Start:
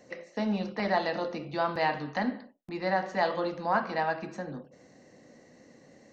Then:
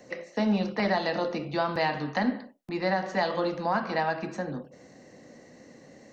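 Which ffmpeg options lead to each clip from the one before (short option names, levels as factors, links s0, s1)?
-filter_complex "[0:a]acrossover=split=260|3000[s0][s1][s2];[s1]acompressor=threshold=0.0398:ratio=6[s3];[s0][s3][s2]amix=inputs=3:normalize=0,volume=1.68"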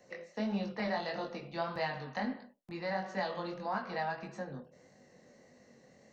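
-af "equalizer=f=300:w=5.6:g=-9.5,flanger=delay=20:depth=4.1:speed=1.6,volume=0.531"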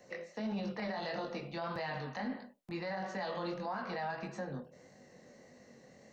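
-af "alimiter=level_in=2.66:limit=0.0631:level=0:latency=1:release=30,volume=0.376,volume=1.33"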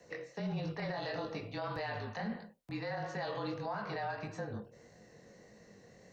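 -af "afreqshift=-34"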